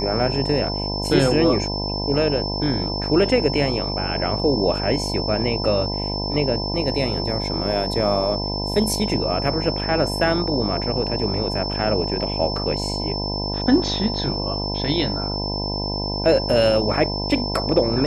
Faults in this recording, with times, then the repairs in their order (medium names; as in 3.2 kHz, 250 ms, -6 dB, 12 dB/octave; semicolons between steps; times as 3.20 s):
buzz 50 Hz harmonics 20 -27 dBFS
whine 5.3 kHz -27 dBFS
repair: band-stop 5.3 kHz, Q 30; de-hum 50 Hz, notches 20